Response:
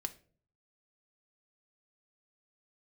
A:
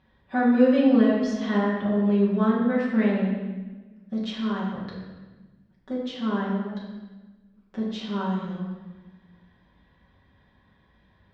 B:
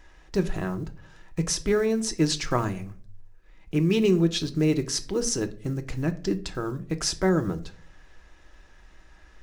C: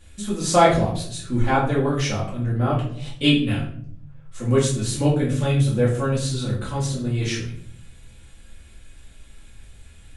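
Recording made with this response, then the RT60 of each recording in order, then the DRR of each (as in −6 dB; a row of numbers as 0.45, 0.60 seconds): B; 1.3, 0.45, 0.60 seconds; −6.5, 7.5, −7.5 decibels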